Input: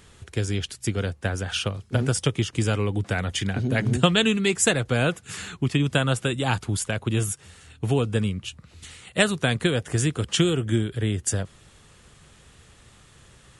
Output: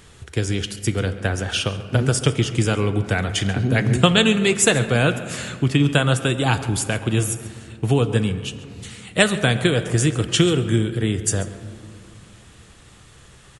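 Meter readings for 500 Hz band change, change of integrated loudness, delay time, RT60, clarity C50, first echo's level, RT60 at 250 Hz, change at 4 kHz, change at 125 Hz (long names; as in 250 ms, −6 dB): +4.5 dB, +4.5 dB, 137 ms, 2.5 s, 11.5 dB, −17.5 dB, 3.2 s, +4.0 dB, +4.5 dB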